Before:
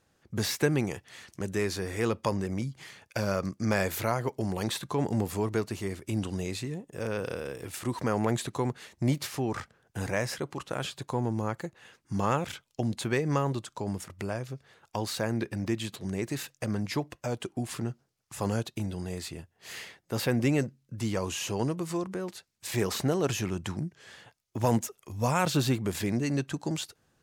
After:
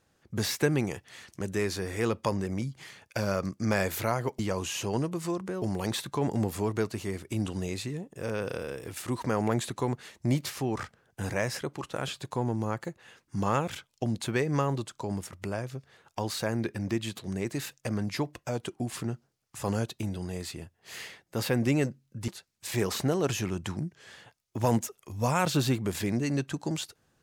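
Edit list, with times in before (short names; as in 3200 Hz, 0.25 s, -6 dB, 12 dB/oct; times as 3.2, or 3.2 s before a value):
21.05–22.28 move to 4.39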